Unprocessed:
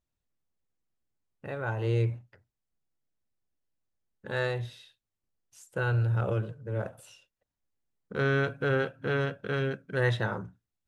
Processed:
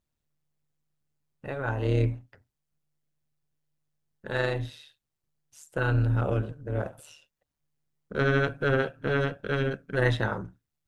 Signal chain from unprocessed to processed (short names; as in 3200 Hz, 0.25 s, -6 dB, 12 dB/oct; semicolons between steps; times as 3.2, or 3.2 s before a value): AM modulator 150 Hz, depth 45%; gain +5 dB